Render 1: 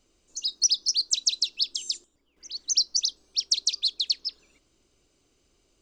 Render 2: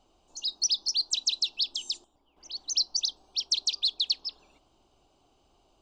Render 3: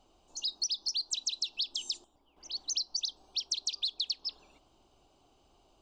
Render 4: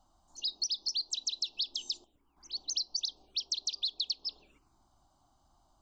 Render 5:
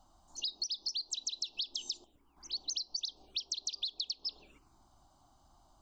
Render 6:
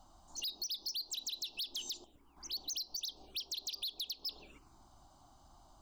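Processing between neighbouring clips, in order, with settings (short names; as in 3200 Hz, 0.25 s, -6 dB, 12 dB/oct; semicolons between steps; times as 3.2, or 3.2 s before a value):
EQ curve 510 Hz 0 dB, 790 Hz +15 dB, 2000 Hz -10 dB, 3000 Hz +2 dB, 6500 Hz -8 dB; gain +1 dB
compressor 6:1, threshold -30 dBFS, peak gain reduction 8.5 dB
envelope phaser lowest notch 410 Hz, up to 1900 Hz, full sweep at -37 dBFS
compressor 5:1, threshold -38 dBFS, peak gain reduction 9.5 dB; gain +3.5 dB
soft clip -39 dBFS, distortion -8 dB; gain +3.5 dB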